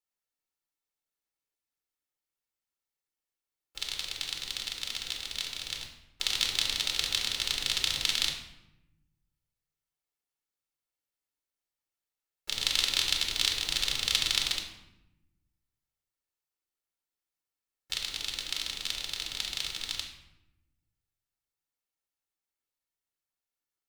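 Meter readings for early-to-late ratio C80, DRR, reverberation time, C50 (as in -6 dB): 8.5 dB, 2.0 dB, 0.90 s, 6.0 dB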